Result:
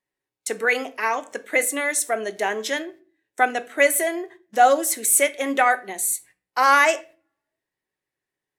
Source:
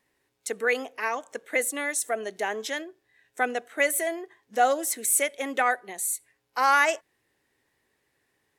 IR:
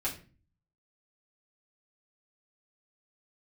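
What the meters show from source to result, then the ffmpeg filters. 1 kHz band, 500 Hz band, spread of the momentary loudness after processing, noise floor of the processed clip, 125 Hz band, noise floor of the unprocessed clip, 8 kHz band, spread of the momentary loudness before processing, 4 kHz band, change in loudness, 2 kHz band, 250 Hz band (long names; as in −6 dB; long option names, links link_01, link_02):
+6.0 dB, +5.5 dB, 12 LU, below −85 dBFS, can't be measured, −75 dBFS, +5.0 dB, 12 LU, +5.0 dB, +5.5 dB, +5.0 dB, +6.0 dB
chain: -filter_complex "[0:a]agate=range=-19dB:threshold=-50dB:ratio=16:detection=peak,asplit=2[link_01][link_02];[1:a]atrim=start_sample=2205[link_03];[link_02][link_03]afir=irnorm=-1:irlink=0,volume=-11dB[link_04];[link_01][link_04]amix=inputs=2:normalize=0,volume=3.5dB"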